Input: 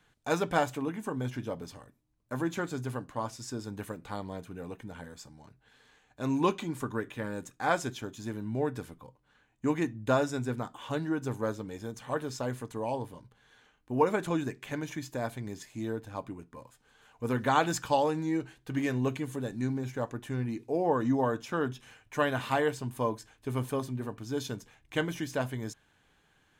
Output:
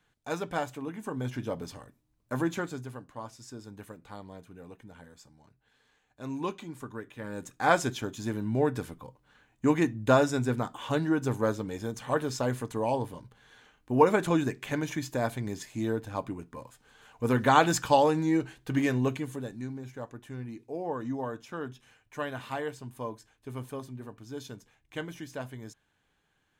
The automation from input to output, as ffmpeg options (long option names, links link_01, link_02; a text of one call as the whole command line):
ffmpeg -i in.wav -af "volume=14dB,afade=type=in:start_time=0.81:duration=0.79:silence=0.421697,afade=type=out:start_time=2.41:duration=0.49:silence=0.334965,afade=type=in:start_time=7.15:duration=0.54:silence=0.281838,afade=type=out:start_time=18.72:duration=0.95:silence=0.281838" out.wav